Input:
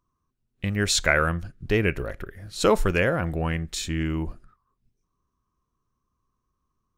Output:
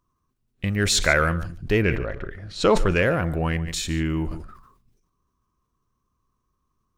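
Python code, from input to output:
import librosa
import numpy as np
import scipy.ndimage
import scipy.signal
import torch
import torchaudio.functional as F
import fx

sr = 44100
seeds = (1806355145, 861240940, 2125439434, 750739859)

p1 = fx.lowpass(x, sr, hz=fx.line((1.82, 3000.0), (3.01, 7000.0)), slope=12, at=(1.82, 3.01), fade=0.02)
p2 = 10.0 ** (-21.0 / 20.0) * np.tanh(p1 / 10.0 ** (-21.0 / 20.0))
p3 = p1 + (p2 * 10.0 ** (-9.5 / 20.0))
p4 = p3 + 10.0 ** (-18.0 / 20.0) * np.pad(p3, (int(145 * sr / 1000.0), 0))[:len(p3)]
y = fx.sustainer(p4, sr, db_per_s=71.0)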